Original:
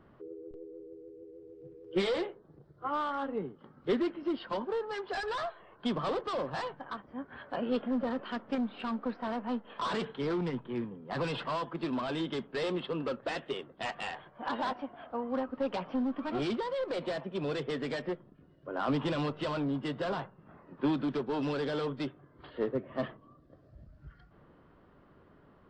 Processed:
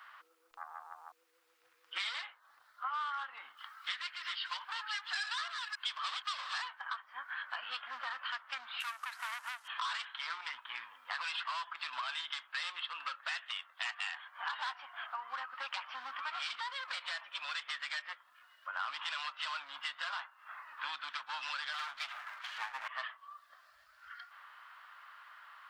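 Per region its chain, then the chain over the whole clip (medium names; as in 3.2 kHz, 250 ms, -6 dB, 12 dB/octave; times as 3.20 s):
0.57–1.12 s: treble shelf 6.4 kHz +7.5 dB + loudspeaker Doppler distortion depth 0.79 ms
3.57–6.58 s: chunks repeated in reverse 273 ms, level -8 dB + tilt shelf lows -6.5 dB, about 1.4 kHz
8.80–9.68 s: CVSD coder 64 kbps + high-pass 390 Hz 6 dB/octave + transformer saturation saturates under 1.5 kHz
21.73–22.88 s: comb filter that takes the minimum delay 8.2 ms + treble shelf 6.5 kHz -6.5 dB + decay stretcher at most 54 dB/s
whole clip: inverse Chebyshev high-pass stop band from 450 Hz, stop band 50 dB; compression 3:1, threshold -57 dBFS; trim +16 dB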